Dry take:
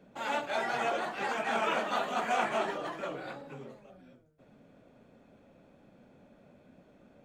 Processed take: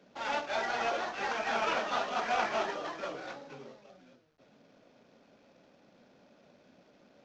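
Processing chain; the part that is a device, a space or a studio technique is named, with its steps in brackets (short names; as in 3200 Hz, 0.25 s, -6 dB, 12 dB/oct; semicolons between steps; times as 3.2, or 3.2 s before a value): early wireless headset (HPF 290 Hz 6 dB/oct; CVSD 32 kbps)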